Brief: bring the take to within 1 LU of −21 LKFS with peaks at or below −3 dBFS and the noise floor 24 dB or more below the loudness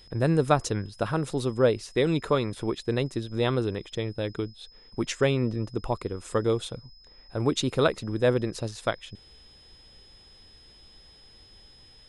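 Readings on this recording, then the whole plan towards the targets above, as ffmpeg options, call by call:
interfering tone 5,100 Hz; level of the tone −53 dBFS; integrated loudness −27.5 LKFS; sample peak −8.5 dBFS; target loudness −21.0 LKFS
→ -af "bandreject=frequency=5100:width=30"
-af "volume=6.5dB,alimiter=limit=-3dB:level=0:latency=1"

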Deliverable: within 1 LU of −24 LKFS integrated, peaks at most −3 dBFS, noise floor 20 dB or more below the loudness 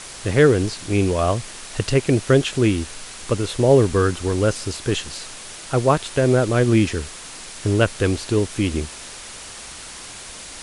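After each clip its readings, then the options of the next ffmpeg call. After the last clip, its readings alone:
background noise floor −37 dBFS; target noise floor −40 dBFS; integrated loudness −20.0 LKFS; sample peak −3.0 dBFS; target loudness −24.0 LKFS
→ -af "afftdn=noise_reduction=6:noise_floor=-37"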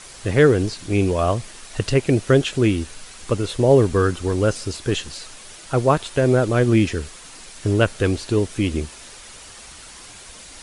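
background noise floor −42 dBFS; integrated loudness −20.0 LKFS; sample peak −3.0 dBFS; target loudness −24.0 LKFS
→ -af "volume=-4dB"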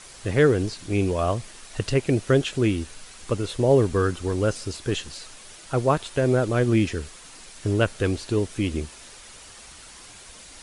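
integrated loudness −24.0 LKFS; sample peak −7.0 dBFS; background noise floor −46 dBFS

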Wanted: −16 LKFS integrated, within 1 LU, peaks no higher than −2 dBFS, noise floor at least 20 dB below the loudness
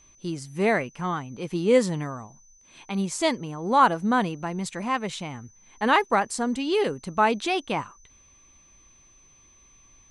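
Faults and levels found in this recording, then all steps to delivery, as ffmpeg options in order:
interfering tone 6,100 Hz; level of the tone −55 dBFS; integrated loudness −25.5 LKFS; sample peak −6.5 dBFS; target loudness −16.0 LKFS
→ -af "bandreject=frequency=6100:width=30"
-af "volume=9.5dB,alimiter=limit=-2dB:level=0:latency=1"

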